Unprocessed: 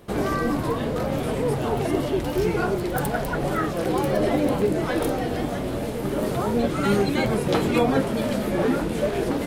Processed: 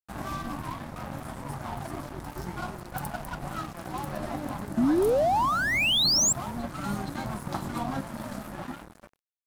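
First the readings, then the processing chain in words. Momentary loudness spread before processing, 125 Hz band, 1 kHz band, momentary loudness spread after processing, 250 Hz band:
4 LU, -9.0 dB, -3.0 dB, 16 LU, -8.5 dB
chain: ending faded out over 1.10 s; bell 960 Hz +3 dB 1.5 oct; fixed phaser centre 1100 Hz, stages 4; resonator 540 Hz, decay 0.49 s, mix 40%; painted sound rise, 4.77–6.33, 220–7800 Hz -21 dBFS; crossover distortion -37.5 dBFS; dynamic EQ 1600 Hz, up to -5 dB, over -38 dBFS, Q 1.2

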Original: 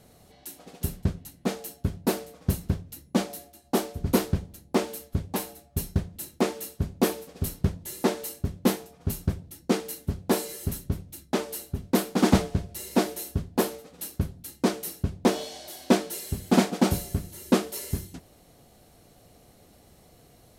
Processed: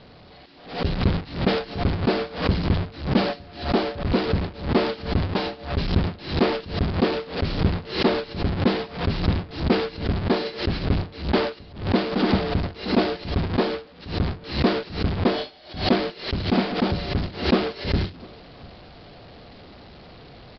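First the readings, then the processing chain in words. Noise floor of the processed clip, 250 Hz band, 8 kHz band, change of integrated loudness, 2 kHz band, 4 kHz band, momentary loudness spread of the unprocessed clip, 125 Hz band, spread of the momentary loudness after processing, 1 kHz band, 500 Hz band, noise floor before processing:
-46 dBFS, +3.0 dB, under -20 dB, +4.0 dB, +7.5 dB, +7.5 dB, 10 LU, +5.5 dB, 6 LU, +5.0 dB, +5.0 dB, -57 dBFS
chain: zero-crossing step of -20.5 dBFS; gate with hold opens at -15 dBFS; vocal rider within 4 dB 0.5 s; steep low-pass 5000 Hz 96 dB/oct; short-mantissa float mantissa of 8-bit; outdoor echo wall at 120 m, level -24 dB; backwards sustainer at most 120 dB/s

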